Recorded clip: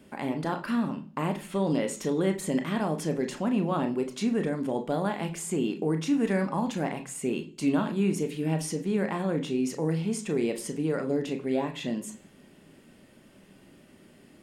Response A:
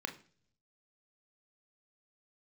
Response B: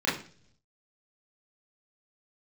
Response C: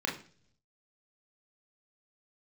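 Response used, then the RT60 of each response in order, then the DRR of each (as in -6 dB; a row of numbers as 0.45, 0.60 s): A; 0.50, 0.50, 0.50 s; 5.0, -9.0, -1.5 dB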